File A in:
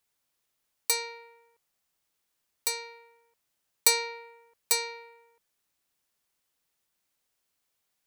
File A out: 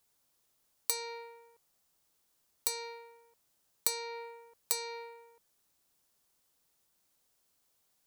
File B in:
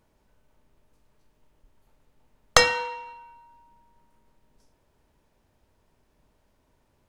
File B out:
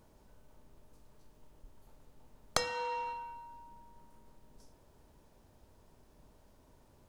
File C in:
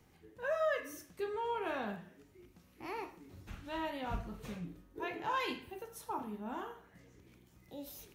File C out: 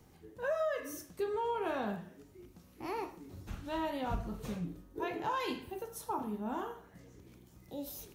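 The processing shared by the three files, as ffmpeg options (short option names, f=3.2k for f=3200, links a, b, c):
-af "acompressor=threshold=-34dB:ratio=6,equalizer=f=2.2k:t=o:w=1.4:g=-6,volume=5dB"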